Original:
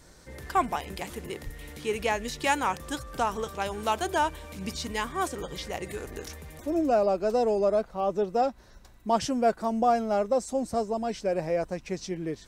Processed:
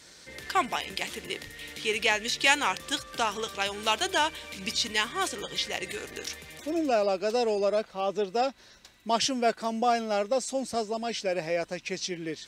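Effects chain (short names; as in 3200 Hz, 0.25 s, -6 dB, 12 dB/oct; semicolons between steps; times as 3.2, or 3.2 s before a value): weighting filter D; gain -1.5 dB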